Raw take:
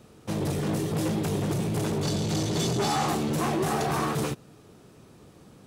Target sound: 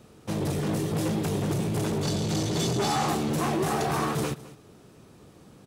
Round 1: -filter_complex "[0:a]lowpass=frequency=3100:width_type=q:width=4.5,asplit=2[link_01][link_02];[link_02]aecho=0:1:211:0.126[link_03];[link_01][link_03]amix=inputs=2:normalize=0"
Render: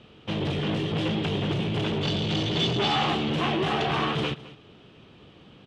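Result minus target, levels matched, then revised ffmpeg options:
4,000 Hz band +6.5 dB
-filter_complex "[0:a]asplit=2[link_01][link_02];[link_02]aecho=0:1:211:0.126[link_03];[link_01][link_03]amix=inputs=2:normalize=0"

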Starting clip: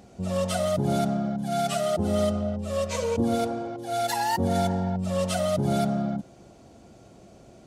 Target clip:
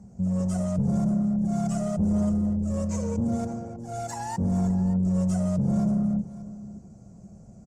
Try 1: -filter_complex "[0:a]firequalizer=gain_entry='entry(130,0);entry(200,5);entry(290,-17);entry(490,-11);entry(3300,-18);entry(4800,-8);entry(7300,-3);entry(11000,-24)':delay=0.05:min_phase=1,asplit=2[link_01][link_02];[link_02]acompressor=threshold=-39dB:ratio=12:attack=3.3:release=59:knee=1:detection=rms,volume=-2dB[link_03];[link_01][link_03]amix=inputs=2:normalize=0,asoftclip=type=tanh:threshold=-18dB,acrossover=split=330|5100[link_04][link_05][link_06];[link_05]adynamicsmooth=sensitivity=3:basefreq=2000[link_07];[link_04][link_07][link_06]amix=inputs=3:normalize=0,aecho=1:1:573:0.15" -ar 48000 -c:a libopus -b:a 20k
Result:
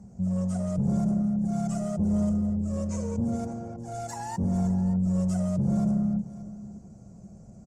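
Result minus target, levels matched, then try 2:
downward compressor: peak gain reduction +10 dB
-filter_complex "[0:a]firequalizer=gain_entry='entry(130,0);entry(200,5);entry(290,-17);entry(490,-11);entry(3300,-18);entry(4800,-8);entry(7300,-3);entry(11000,-24)':delay=0.05:min_phase=1,asplit=2[link_01][link_02];[link_02]acompressor=threshold=-28dB:ratio=12:attack=3.3:release=59:knee=1:detection=rms,volume=-2dB[link_03];[link_01][link_03]amix=inputs=2:normalize=0,asoftclip=type=tanh:threshold=-18dB,acrossover=split=330|5100[link_04][link_05][link_06];[link_05]adynamicsmooth=sensitivity=3:basefreq=2000[link_07];[link_04][link_07][link_06]amix=inputs=3:normalize=0,aecho=1:1:573:0.15" -ar 48000 -c:a libopus -b:a 20k

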